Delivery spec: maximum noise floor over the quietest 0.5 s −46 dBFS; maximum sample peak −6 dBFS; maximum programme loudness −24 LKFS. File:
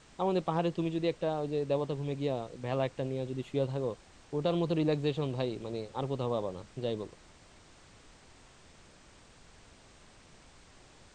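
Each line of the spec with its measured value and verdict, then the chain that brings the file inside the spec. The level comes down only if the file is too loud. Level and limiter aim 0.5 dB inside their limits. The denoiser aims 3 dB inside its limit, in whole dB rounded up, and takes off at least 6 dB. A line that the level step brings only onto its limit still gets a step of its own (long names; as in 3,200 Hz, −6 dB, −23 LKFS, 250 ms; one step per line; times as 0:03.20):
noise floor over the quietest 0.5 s −57 dBFS: in spec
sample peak −17.0 dBFS: in spec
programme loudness −33.5 LKFS: in spec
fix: no processing needed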